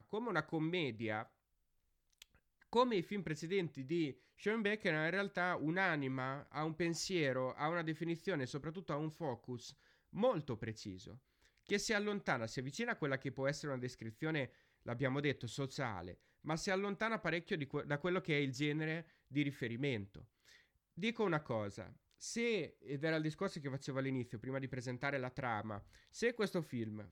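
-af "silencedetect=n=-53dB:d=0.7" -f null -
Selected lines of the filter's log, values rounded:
silence_start: 1.25
silence_end: 2.22 | silence_duration: 0.97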